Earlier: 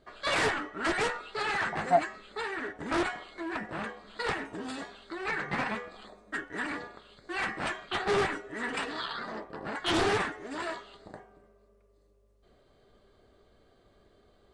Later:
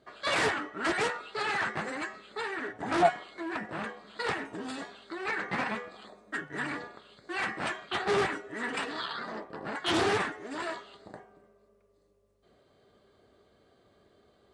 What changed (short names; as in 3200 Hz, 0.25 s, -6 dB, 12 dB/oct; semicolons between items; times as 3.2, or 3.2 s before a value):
speech: entry +1.10 s; master: add HPF 89 Hz 12 dB/oct